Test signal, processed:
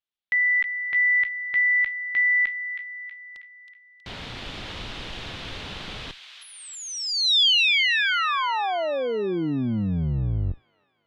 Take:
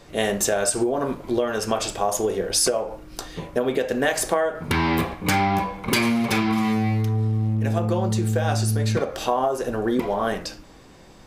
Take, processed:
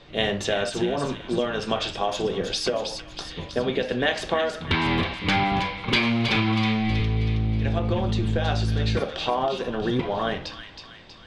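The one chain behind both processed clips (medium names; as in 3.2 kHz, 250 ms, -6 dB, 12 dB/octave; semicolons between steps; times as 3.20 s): octave divider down 1 oct, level -3 dB; resonant low-pass 3.5 kHz, resonance Q 2.5; feedback echo behind a high-pass 320 ms, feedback 52%, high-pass 1.9 kHz, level -6 dB; trim -3 dB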